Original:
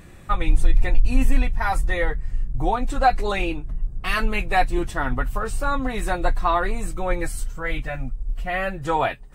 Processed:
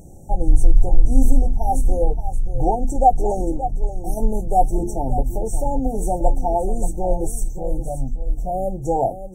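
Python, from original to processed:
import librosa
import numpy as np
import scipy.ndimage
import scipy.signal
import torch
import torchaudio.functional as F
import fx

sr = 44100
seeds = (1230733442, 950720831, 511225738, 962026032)

p1 = fx.brickwall_bandstop(x, sr, low_hz=900.0, high_hz=5500.0)
p2 = fx.hum_notches(p1, sr, base_hz=50, count=7)
p3 = p2 + fx.echo_single(p2, sr, ms=576, db=-11.5, dry=0)
y = F.gain(torch.from_numpy(p3), 4.0).numpy()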